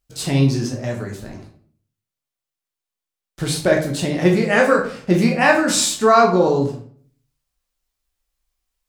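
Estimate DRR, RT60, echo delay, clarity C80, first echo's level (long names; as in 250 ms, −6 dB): −1.0 dB, 0.50 s, no echo audible, 12.0 dB, no echo audible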